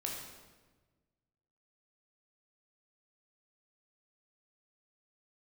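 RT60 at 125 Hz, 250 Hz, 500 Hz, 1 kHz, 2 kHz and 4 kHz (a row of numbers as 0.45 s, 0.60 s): 1.9 s, 1.7 s, 1.4 s, 1.2 s, 1.1 s, 1.0 s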